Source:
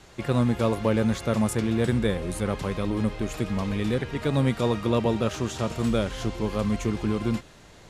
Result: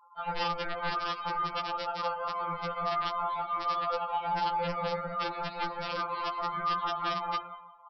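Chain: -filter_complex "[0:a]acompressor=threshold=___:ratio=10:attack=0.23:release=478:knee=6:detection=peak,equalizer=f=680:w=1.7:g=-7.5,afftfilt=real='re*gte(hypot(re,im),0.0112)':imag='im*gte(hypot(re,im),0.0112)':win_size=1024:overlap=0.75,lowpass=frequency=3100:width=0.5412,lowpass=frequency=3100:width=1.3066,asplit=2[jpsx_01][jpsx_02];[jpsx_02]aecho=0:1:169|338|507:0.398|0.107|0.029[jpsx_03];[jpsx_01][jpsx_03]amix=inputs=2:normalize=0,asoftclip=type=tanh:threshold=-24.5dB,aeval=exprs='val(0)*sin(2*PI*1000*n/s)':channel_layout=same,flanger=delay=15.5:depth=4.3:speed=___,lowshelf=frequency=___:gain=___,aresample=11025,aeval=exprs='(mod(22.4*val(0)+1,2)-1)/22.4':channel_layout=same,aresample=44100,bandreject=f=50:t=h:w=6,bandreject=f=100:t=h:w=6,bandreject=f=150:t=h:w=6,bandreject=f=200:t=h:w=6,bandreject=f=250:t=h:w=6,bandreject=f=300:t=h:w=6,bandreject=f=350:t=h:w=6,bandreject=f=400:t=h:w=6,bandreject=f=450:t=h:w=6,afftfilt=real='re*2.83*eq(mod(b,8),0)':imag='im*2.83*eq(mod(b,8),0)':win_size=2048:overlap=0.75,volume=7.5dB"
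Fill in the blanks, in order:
-24dB, 2.5, 410, 12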